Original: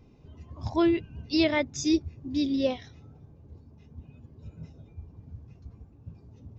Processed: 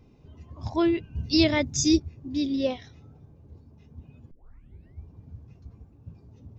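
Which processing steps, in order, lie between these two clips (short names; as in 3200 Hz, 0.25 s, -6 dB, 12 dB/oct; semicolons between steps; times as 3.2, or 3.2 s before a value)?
1.15–2 tone controls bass +10 dB, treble +10 dB; 4.31 tape start 0.72 s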